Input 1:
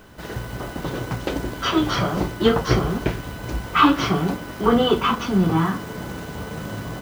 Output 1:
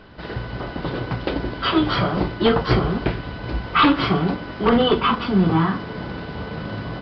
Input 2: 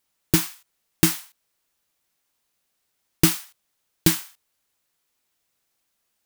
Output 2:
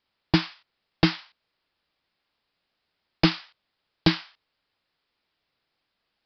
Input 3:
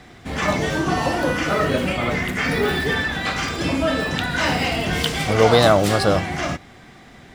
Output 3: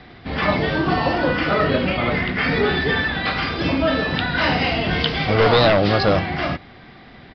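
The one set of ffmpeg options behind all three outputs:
-filter_complex "[0:a]acrossover=split=2300[a][b];[a]aeval=exprs='0.299*(abs(mod(val(0)/0.299+3,4)-2)-1)':c=same[c];[c][b]amix=inputs=2:normalize=0,aresample=11025,aresample=44100,volume=1.5dB"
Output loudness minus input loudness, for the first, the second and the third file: +1.0, -3.0, +1.0 LU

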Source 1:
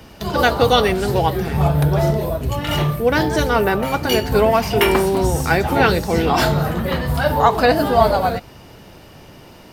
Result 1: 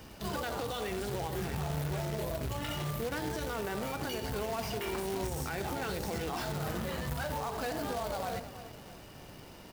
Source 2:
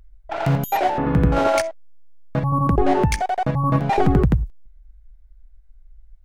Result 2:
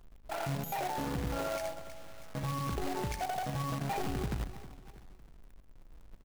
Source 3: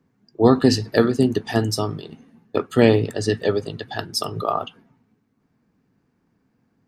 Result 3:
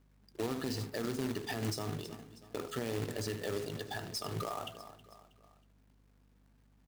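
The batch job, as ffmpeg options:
-filter_complex "[0:a]asplit=2[a][b];[b]aecho=0:1:77:0.133[c];[a][c]amix=inputs=2:normalize=0,acompressor=threshold=-18dB:ratio=6,bandreject=f=82.84:t=h:w=4,bandreject=f=165.68:t=h:w=4,bandreject=f=248.52:t=h:w=4,bandreject=f=331.36:t=h:w=4,bandreject=f=414.2:t=h:w=4,bandreject=f=497.04:t=h:w=4,bandreject=f=579.88:t=h:w=4,bandreject=f=662.72:t=h:w=4,bandreject=f=745.56:t=h:w=4,bandreject=f=828.4:t=h:w=4,bandreject=f=911.24:t=h:w=4,bandreject=f=994.08:t=h:w=4,asplit=2[d][e];[e]aecho=0:1:319|638|957:0.112|0.0494|0.0217[f];[d][f]amix=inputs=2:normalize=0,alimiter=limit=-19.5dB:level=0:latency=1:release=58,aeval=exprs='val(0)+0.00141*(sin(2*PI*50*n/s)+sin(2*PI*2*50*n/s)/2+sin(2*PI*3*50*n/s)/3+sin(2*PI*4*50*n/s)/4+sin(2*PI*5*50*n/s)/5)':c=same,acrusher=bits=2:mode=log:mix=0:aa=0.000001,volume=-8.5dB"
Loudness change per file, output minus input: -18.5, -16.0, -17.5 LU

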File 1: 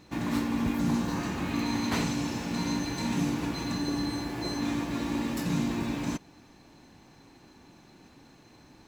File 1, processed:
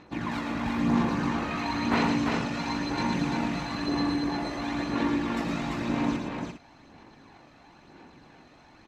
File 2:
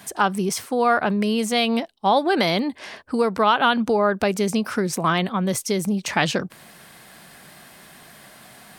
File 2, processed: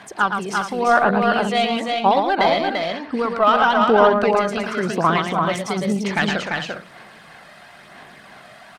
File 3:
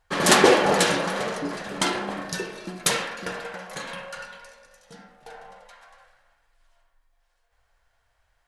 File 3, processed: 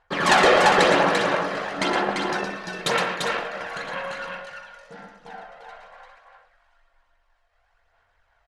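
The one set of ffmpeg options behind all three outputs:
-filter_complex "[0:a]tremolo=f=47:d=0.261,aemphasis=mode=reproduction:type=75fm,asplit=2[a][b];[b]highpass=f=720:p=1,volume=10dB,asoftclip=type=tanh:threshold=-3dB[c];[a][c]amix=inputs=2:normalize=0,lowpass=f=7.4k:p=1,volume=-6dB,aphaser=in_gain=1:out_gain=1:delay=1.6:decay=0.51:speed=1:type=sinusoidal,asplit=2[d][e];[e]aecho=0:1:115|343|404:0.501|0.631|0.251[f];[d][f]amix=inputs=2:normalize=0,volume=-2dB"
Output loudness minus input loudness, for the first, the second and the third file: +2.0, +2.5, +1.5 LU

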